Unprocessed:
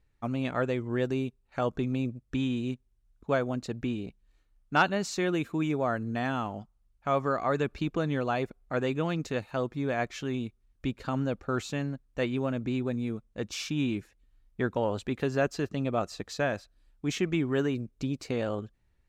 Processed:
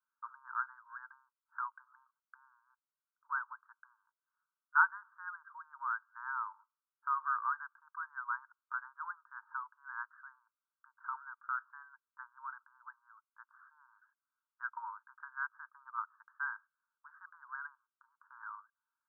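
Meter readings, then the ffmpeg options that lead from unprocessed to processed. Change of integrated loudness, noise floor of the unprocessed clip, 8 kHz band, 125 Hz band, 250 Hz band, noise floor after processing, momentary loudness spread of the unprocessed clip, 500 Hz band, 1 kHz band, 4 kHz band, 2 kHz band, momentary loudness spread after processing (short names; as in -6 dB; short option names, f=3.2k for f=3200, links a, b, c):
-8.5 dB, -69 dBFS, under -35 dB, under -40 dB, under -40 dB, under -85 dBFS, 8 LU, under -40 dB, -4.0 dB, under -40 dB, -2.5 dB, 20 LU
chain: -af "asuperpass=centerf=1200:order=20:qfactor=1.7,aderivative,volume=14dB"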